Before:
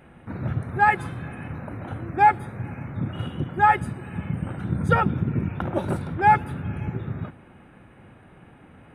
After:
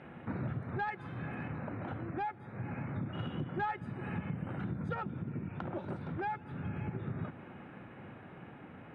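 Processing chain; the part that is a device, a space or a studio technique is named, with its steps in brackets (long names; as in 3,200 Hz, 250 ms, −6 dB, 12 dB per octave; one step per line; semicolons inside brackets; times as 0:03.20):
AM radio (band-pass filter 110–3,400 Hz; downward compressor 6 to 1, threshold −34 dBFS, peak gain reduction 20.5 dB; soft clipping −26 dBFS, distortion −23 dB; amplitude tremolo 0.26 Hz, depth 26%)
level +1 dB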